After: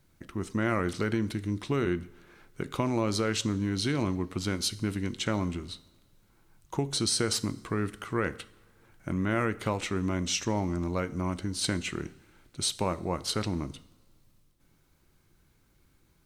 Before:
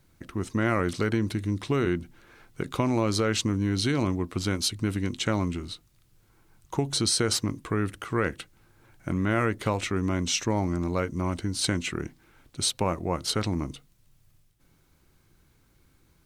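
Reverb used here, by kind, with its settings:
coupled-rooms reverb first 0.66 s, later 2.6 s, from −19 dB, DRR 14.5 dB
level −3 dB

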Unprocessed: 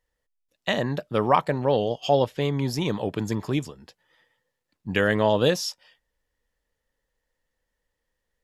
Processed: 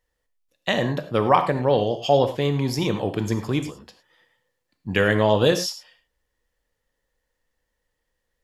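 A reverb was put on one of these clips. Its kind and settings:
reverb whose tail is shaped and stops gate 130 ms flat, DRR 8 dB
level +2 dB

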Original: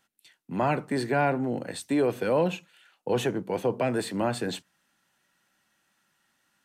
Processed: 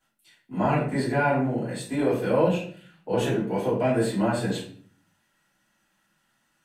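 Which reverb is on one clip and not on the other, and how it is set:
rectangular room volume 51 cubic metres, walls mixed, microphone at 2.9 metres
level −11.5 dB

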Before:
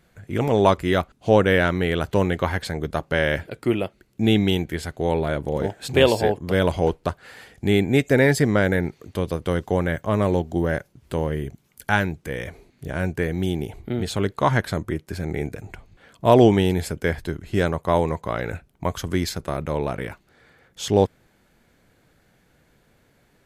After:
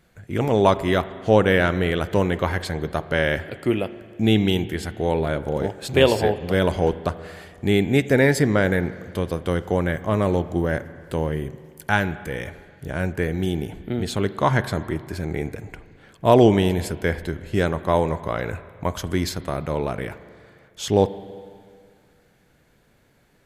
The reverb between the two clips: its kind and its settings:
spring reverb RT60 2.1 s, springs 37/45 ms, chirp 40 ms, DRR 14 dB

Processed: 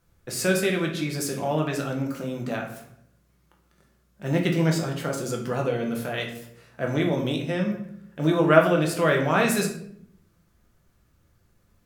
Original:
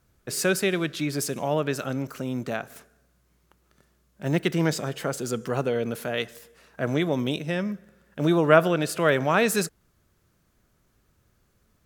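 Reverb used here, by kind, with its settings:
rectangular room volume 120 cubic metres, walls mixed, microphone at 0.78 metres
level −2.5 dB

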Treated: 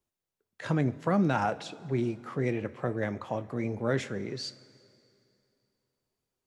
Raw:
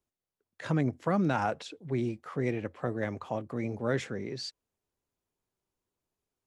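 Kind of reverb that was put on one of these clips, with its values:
coupled-rooms reverb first 0.27 s, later 2.7 s, from −16 dB, DRR 11.5 dB
level +1 dB

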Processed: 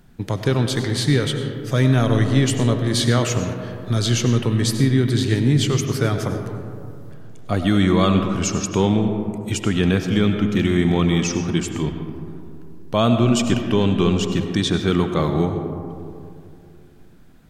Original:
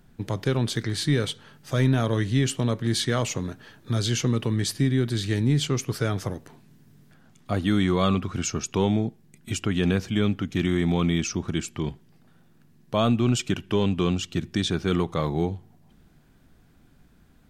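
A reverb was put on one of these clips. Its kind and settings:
comb and all-pass reverb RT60 2.6 s, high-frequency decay 0.3×, pre-delay 55 ms, DRR 6 dB
level +4.5 dB

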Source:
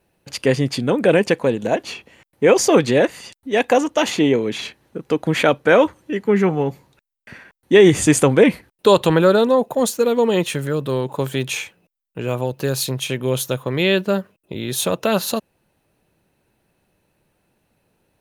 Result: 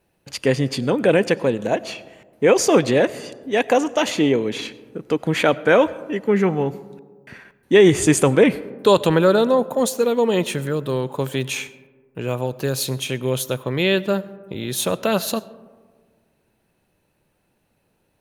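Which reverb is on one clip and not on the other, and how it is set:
comb and all-pass reverb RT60 1.6 s, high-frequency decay 0.3×, pre-delay 55 ms, DRR 18.5 dB
level −1.5 dB

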